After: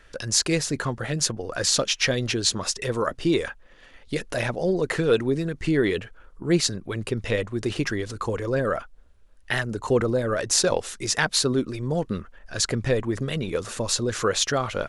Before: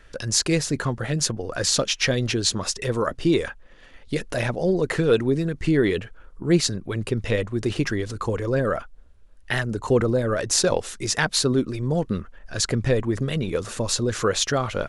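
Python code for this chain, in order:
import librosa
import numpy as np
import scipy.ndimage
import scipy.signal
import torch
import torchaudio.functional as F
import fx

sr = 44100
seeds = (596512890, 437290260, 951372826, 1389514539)

y = fx.low_shelf(x, sr, hz=330.0, db=-4.0)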